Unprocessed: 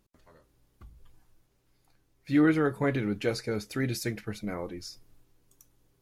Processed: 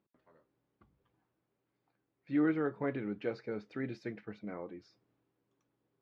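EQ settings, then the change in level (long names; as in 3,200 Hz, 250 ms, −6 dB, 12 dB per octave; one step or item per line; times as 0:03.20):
high-pass filter 180 Hz 12 dB per octave
low-pass filter 2,500 Hz 6 dB per octave
high-frequency loss of the air 220 metres
−6.0 dB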